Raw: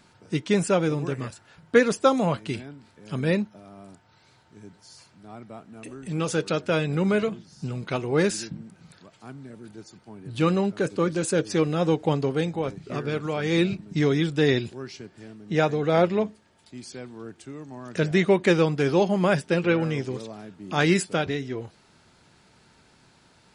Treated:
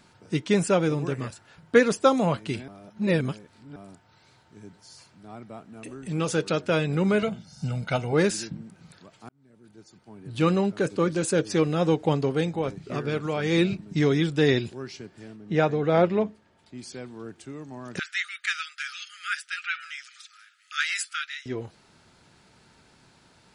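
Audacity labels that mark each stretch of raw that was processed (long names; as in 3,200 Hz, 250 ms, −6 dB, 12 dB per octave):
2.680000	3.760000	reverse
7.220000	8.130000	comb filter 1.4 ms, depth 69%
9.290000	10.460000	fade in linear
15.360000	16.790000	high-shelf EQ 4,700 Hz −11 dB
17.990000	21.460000	linear-phase brick-wall high-pass 1,200 Hz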